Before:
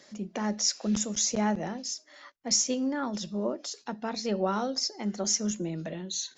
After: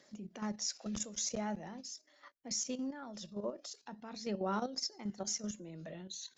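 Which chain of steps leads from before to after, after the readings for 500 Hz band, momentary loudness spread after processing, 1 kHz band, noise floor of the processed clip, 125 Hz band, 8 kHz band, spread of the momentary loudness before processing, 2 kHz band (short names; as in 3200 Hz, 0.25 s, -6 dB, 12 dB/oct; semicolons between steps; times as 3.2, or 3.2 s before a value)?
-9.5 dB, 12 LU, -9.0 dB, -68 dBFS, -10.0 dB, n/a, 10 LU, -10.5 dB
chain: level quantiser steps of 10 dB; phaser 0.44 Hz, delay 2 ms, feedback 28%; gain -6.5 dB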